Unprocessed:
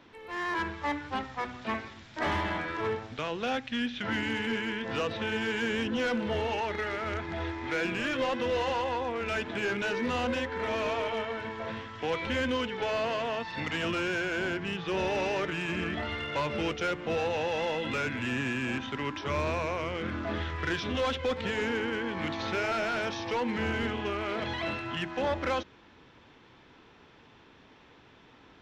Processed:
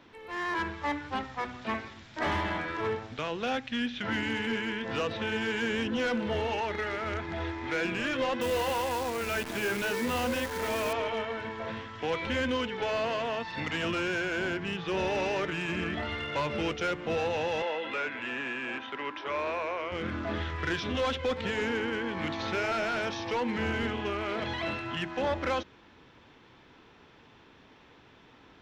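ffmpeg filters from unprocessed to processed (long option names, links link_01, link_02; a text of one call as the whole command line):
ffmpeg -i in.wav -filter_complex "[0:a]asettb=1/sr,asplit=3[link_01][link_02][link_03];[link_01]atrim=end=8.414[link_04];[link_02]atrim=start=8.41:end=10.93,asetpts=PTS-STARTPTS,afade=type=in:duration=0.004:curve=qsin,afade=type=out:start_time=2.516:duration=0.004:curve=qsin,acrusher=bits=7:dc=4:mix=0:aa=0.000001[link_05];[link_03]atrim=start=10.926[link_06];[link_04][link_05]acrossfade=duration=0.004:curve1=hsin:curve2=qsin[link_07];[link_07][link_06]acrossfade=duration=0.004:curve1=qsin:curve2=hsin,asettb=1/sr,asplit=3[link_08][link_09][link_10];[link_08]atrim=end=17.624[link_11];[link_09]atrim=start=17.62:end=19.92,asetpts=PTS-STARTPTS,afade=type=in:duration=0.004:curve=qsin,afade=type=out:start_time=2.296:duration=0.004:curve=qsin,acrossover=split=320 3800:gain=0.1 1 0.224[link_12][link_13][link_14];[link_12][link_13][link_14]amix=inputs=3:normalize=0[link_15];[link_10]atrim=start=19.916[link_16];[link_11][link_15]acrossfade=duration=0.004:curve1=hsin:curve2=qsin[link_17];[link_17][link_16]acrossfade=duration=0.004:curve1=qsin:curve2=hsin" out.wav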